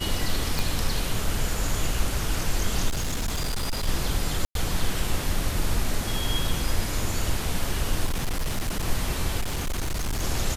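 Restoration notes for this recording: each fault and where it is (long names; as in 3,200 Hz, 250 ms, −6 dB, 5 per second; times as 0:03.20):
0:00.59: click
0:02.88–0:03.88: clipping −23 dBFS
0:04.45–0:04.55: drop-out 102 ms
0:08.05–0:08.88: clipping −22 dBFS
0:09.40–0:10.23: clipping −23.5 dBFS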